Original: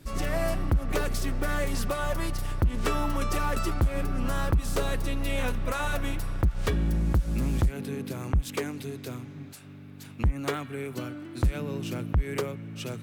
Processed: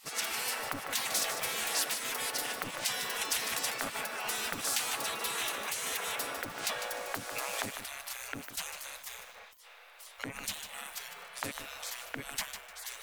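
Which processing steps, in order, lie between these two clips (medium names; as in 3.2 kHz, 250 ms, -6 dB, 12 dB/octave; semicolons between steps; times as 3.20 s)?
spectral gate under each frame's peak -25 dB weak; peaking EQ 360 Hz -10.5 dB 0.3 oct; bit-crushed delay 151 ms, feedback 35%, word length 9-bit, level -8 dB; trim +7.5 dB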